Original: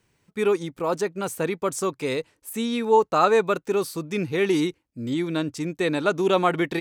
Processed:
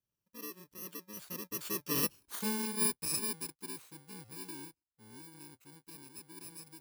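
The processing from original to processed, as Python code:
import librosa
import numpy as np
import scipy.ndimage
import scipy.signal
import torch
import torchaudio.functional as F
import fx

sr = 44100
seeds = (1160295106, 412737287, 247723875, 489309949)

y = fx.bit_reversed(x, sr, seeds[0], block=64)
y = fx.doppler_pass(y, sr, speed_mps=23, closest_m=3.4, pass_at_s=2.16)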